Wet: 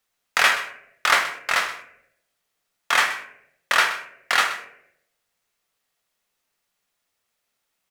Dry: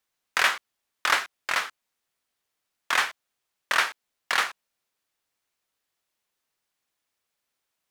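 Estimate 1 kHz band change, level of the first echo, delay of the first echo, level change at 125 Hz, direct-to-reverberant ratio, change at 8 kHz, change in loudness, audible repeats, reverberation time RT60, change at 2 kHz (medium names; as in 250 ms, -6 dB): +5.0 dB, -15.5 dB, 127 ms, no reading, 4.5 dB, +4.5 dB, +5.0 dB, 1, 0.75 s, +5.0 dB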